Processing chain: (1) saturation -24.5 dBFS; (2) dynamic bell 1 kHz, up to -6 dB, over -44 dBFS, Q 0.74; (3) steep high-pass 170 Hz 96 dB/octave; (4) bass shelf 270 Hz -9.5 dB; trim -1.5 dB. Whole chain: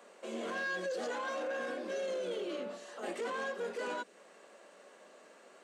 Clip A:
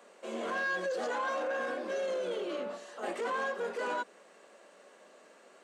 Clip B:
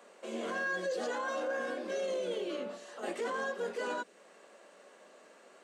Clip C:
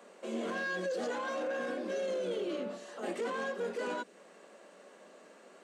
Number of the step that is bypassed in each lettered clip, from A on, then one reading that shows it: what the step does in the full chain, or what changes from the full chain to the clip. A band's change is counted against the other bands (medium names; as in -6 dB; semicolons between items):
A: 2, momentary loudness spread change -14 LU; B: 1, distortion -18 dB; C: 4, 250 Hz band +4.5 dB